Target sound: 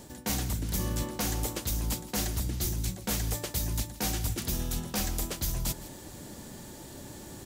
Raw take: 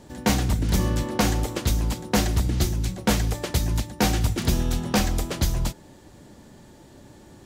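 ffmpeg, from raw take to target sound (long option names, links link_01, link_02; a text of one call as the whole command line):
ffmpeg -i in.wav -af "aemphasis=mode=production:type=50kf,areverse,acompressor=threshold=-32dB:ratio=5,areverse,aecho=1:1:163:0.141,volume=2.5dB" out.wav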